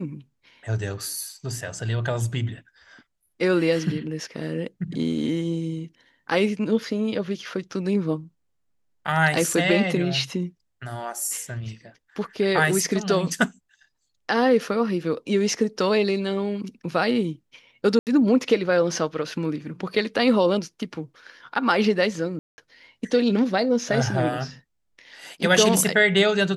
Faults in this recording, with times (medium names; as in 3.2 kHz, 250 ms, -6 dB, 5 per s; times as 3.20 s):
17.99–18.07 s: dropout 78 ms
22.39–22.58 s: dropout 190 ms